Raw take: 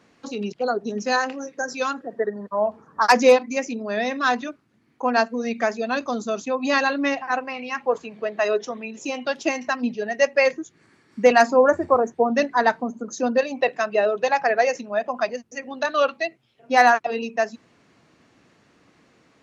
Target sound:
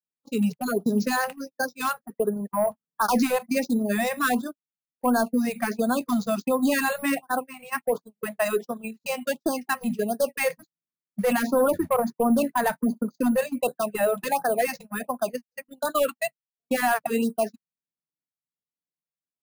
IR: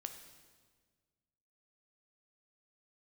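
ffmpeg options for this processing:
-filter_complex "[0:a]adynamicequalizer=threshold=0.0112:dfrequency=220:dqfactor=1.7:tfrequency=220:tqfactor=1.7:attack=5:release=100:ratio=0.375:range=3:mode=boostabove:tftype=bell,aeval=exprs='0.668*(cos(1*acos(clip(val(0)/0.668,-1,1)))-cos(1*PI/2))+0.0119*(cos(4*acos(clip(val(0)/0.668,-1,1)))-cos(4*PI/2))+0.0668*(cos(5*acos(clip(val(0)/0.668,-1,1)))-cos(5*PI/2))':c=same,equalizer=f=160:t=o:w=0.4:g=8,asplit=2[a][b];[b]acompressor=threshold=-27dB:ratio=16,volume=2.5dB[c];[a][c]amix=inputs=2:normalize=0,alimiter=limit=-8.5dB:level=0:latency=1:release=48,acrusher=samples=4:mix=1:aa=0.000001,agate=range=-55dB:threshold=-19dB:ratio=16:detection=peak,afftfilt=real='re*(1-between(b*sr/1024,290*pow(2500/290,0.5+0.5*sin(2*PI*1.4*pts/sr))/1.41,290*pow(2500/290,0.5+0.5*sin(2*PI*1.4*pts/sr))*1.41))':imag='im*(1-between(b*sr/1024,290*pow(2500/290,0.5+0.5*sin(2*PI*1.4*pts/sr))/1.41,290*pow(2500/290,0.5+0.5*sin(2*PI*1.4*pts/sr))*1.41))':win_size=1024:overlap=0.75,volume=-6dB"

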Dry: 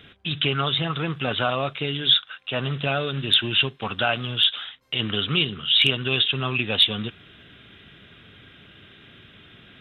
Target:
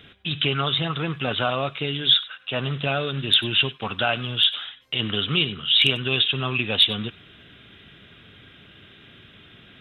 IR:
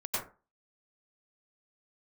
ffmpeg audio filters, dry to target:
-filter_complex "[0:a]asplit=2[a][b];[b]highpass=f=1.4k:w=0.5412,highpass=f=1.4k:w=1.3066[c];[1:a]atrim=start_sample=2205,afade=t=out:st=0.15:d=0.01,atrim=end_sample=7056[d];[c][d]afir=irnorm=-1:irlink=0,volume=-15.5dB[e];[a][e]amix=inputs=2:normalize=0"

